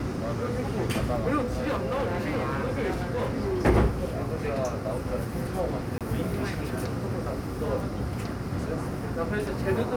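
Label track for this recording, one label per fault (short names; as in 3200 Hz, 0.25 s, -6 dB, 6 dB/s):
1.380000	3.600000	clipped -23.5 dBFS
5.980000	6.010000	gap 27 ms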